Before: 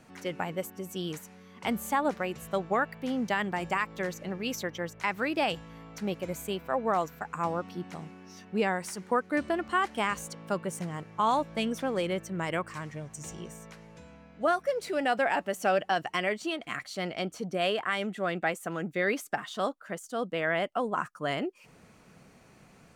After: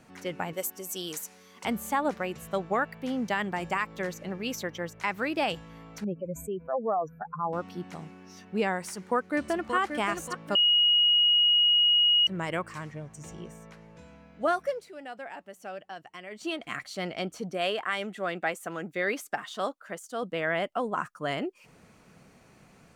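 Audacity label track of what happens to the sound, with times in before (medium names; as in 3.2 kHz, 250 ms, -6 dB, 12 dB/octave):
0.530000	1.650000	tone controls bass -11 dB, treble +11 dB
6.040000	7.530000	spectral contrast enhancement exponent 2.3
8.900000	9.760000	echo throw 580 ms, feedback 35%, level -7 dB
10.550000	12.270000	bleep 2.89 kHz -18.5 dBFS
12.910000	13.990000	treble shelf 3.2 kHz -7.5 dB
14.670000	16.480000	dip -14 dB, fades 0.18 s
17.520000	20.230000	bass shelf 180 Hz -9.5 dB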